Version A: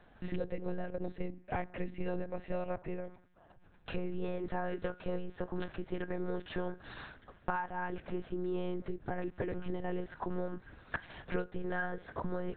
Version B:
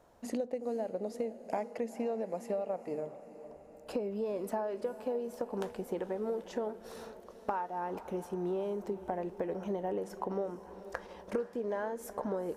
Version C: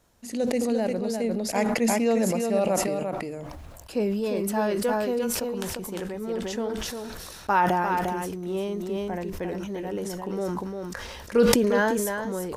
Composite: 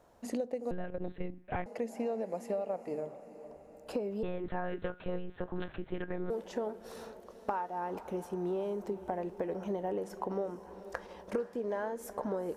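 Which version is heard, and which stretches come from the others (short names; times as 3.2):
B
0.71–1.66 from A
4.23–6.3 from A
not used: C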